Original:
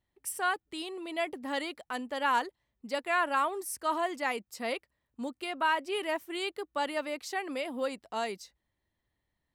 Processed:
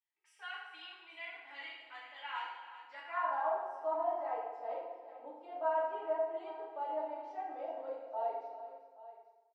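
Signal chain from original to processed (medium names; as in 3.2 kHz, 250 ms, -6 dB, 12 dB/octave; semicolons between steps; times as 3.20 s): three-band isolator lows -21 dB, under 330 Hz, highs -17 dB, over 6.8 kHz; feedback comb 320 Hz, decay 0.2 s, harmonics all, mix 80%; on a send: multi-tap echo 267/386/828 ms -19.5/-13.5/-16.5 dB; on the sum: band-pass sweep 2.4 kHz -> 610 Hz, 2.76–3.53 s; peaking EQ 810 Hz +8 dB 0.79 oct; FDN reverb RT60 1.1 s, low-frequency decay 1×, high-frequency decay 0.75×, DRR -8.5 dB; trim -3.5 dB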